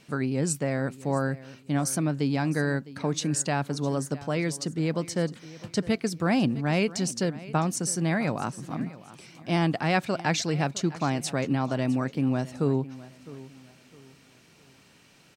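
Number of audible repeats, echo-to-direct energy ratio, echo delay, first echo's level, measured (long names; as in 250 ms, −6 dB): 2, −17.5 dB, 658 ms, −18.0 dB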